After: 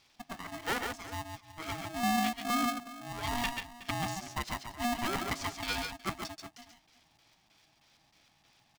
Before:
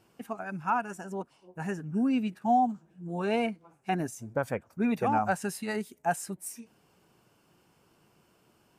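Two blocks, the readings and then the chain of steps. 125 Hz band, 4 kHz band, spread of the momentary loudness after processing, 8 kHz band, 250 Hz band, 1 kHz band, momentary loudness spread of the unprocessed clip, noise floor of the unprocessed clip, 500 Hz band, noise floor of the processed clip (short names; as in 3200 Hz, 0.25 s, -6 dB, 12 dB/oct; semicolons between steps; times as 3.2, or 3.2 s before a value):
-4.5 dB, +9.5 dB, 12 LU, +1.0 dB, -7.0 dB, -5.0 dB, 13 LU, -67 dBFS, -9.0 dB, -69 dBFS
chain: weighting filter D; LFO low-pass square 3.2 Hz 350–4900 Hz; tapped delay 0.13/0.141/0.369 s -9/-6.5/-16.5 dB; polarity switched at an audio rate 480 Hz; gain -7 dB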